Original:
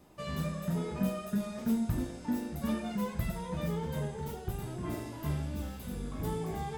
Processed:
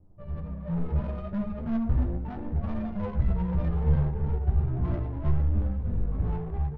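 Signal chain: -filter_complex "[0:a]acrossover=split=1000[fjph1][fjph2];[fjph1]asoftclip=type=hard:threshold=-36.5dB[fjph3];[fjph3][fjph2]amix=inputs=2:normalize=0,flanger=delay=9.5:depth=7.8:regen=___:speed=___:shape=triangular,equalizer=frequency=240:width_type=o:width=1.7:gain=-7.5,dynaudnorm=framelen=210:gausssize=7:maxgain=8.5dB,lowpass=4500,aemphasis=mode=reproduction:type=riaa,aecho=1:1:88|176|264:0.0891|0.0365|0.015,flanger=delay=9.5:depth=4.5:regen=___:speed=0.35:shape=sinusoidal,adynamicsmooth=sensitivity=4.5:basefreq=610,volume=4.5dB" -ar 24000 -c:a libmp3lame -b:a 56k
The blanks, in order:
27, 0.71, 42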